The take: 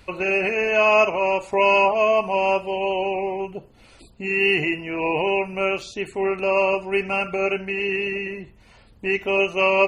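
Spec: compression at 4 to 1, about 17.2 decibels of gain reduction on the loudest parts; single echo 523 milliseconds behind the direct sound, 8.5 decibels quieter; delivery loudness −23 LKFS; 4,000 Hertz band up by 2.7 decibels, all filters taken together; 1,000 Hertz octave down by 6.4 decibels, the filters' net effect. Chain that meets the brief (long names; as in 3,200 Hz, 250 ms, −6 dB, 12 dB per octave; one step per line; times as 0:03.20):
parametric band 1,000 Hz −8 dB
parametric band 4,000 Hz +6 dB
downward compressor 4 to 1, threshold −36 dBFS
single-tap delay 523 ms −8.5 dB
level +12.5 dB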